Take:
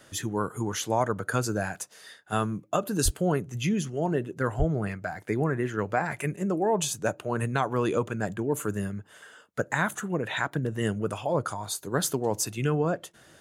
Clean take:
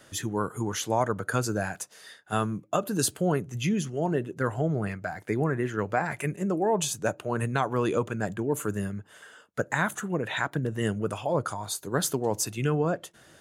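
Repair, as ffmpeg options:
ffmpeg -i in.wav -filter_complex "[0:a]asplit=3[link_01][link_02][link_03];[link_01]afade=type=out:start_time=3.04:duration=0.02[link_04];[link_02]highpass=frequency=140:width=0.5412,highpass=frequency=140:width=1.3066,afade=type=in:start_time=3.04:duration=0.02,afade=type=out:start_time=3.16:duration=0.02[link_05];[link_03]afade=type=in:start_time=3.16:duration=0.02[link_06];[link_04][link_05][link_06]amix=inputs=3:normalize=0,asplit=3[link_07][link_08][link_09];[link_07]afade=type=out:start_time=4.58:duration=0.02[link_10];[link_08]highpass=frequency=140:width=0.5412,highpass=frequency=140:width=1.3066,afade=type=in:start_time=4.58:duration=0.02,afade=type=out:start_time=4.7:duration=0.02[link_11];[link_09]afade=type=in:start_time=4.7:duration=0.02[link_12];[link_10][link_11][link_12]amix=inputs=3:normalize=0" out.wav

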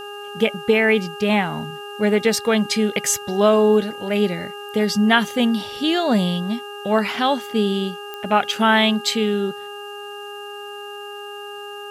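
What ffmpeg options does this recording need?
ffmpeg -i in.wav -af "adeclick=threshold=4,bandreject=frequency=409.6:width_type=h:width=4,bandreject=frequency=819.2:width_type=h:width=4,bandreject=frequency=1228.8:width_type=h:width=4,bandreject=frequency=1638.4:width_type=h:width=4,bandreject=frequency=2800:width=30,agate=range=-21dB:threshold=-26dB" out.wav

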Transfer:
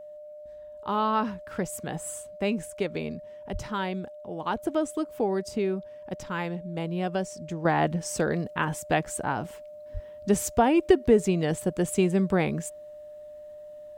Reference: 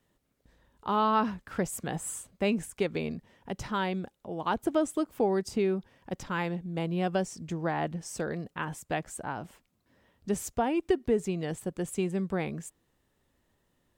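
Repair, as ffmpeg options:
ffmpeg -i in.wav -filter_complex "[0:a]bandreject=frequency=600:width=30,asplit=3[link_01][link_02][link_03];[link_01]afade=type=out:start_time=3.52:duration=0.02[link_04];[link_02]highpass=frequency=140:width=0.5412,highpass=frequency=140:width=1.3066,afade=type=in:start_time=3.52:duration=0.02,afade=type=out:start_time=3.64:duration=0.02[link_05];[link_03]afade=type=in:start_time=3.64:duration=0.02[link_06];[link_04][link_05][link_06]amix=inputs=3:normalize=0,asplit=3[link_07][link_08][link_09];[link_07]afade=type=out:start_time=9.93:duration=0.02[link_10];[link_08]highpass=frequency=140:width=0.5412,highpass=frequency=140:width=1.3066,afade=type=in:start_time=9.93:duration=0.02,afade=type=out:start_time=10.05:duration=0.02[link_11];[link_09]afade=type=in:start_time=10.05:duration=0.02[link_12];[link_10][link_11][link_12]amix=inputs=3:normalize=0,asetnsamples=nb_out_samples=441:pad=0,asendcmd='7.65 volume volume -7dB',volume=0dB" out.wav

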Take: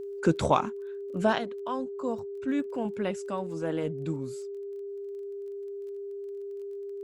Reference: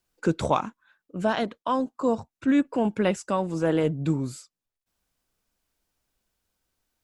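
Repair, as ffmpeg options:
ffmpeg -i in.wav -af "adeclick=threshold=4,bandreject=frequency=400:width=30,asetnsamples=nb_out_samples=441:pad=0,asendcmd='1.38 volume volume 8dB',volume=0dB" out.wav

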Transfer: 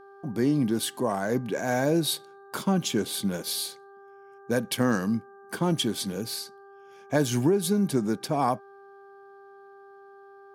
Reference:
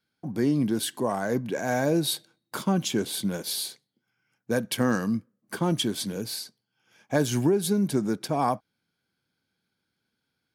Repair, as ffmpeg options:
ffmpeg -i in.wav -af "bandreject=frequency=395.8:width_type=h:width=4,bandreject=frequency=791.6:width_type=h:width=4,bandreject=frequency=1187.4:width_type=h:width=4,bandreject=frequency=1583.2:width_type=h:width=4" out.wav

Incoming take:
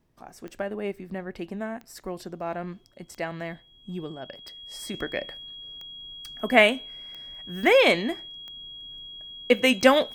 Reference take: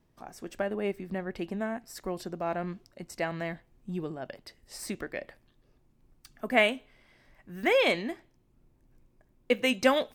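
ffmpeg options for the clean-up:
ffmpeg -i in.wav -af "adeclick=threshold=4,bandreject=frequency=3300:width=30,asetnsamples=nb_out_samples=441:pad=0,asendcmd='4.94 volume volume -6dB',volume=0dB" out.wav

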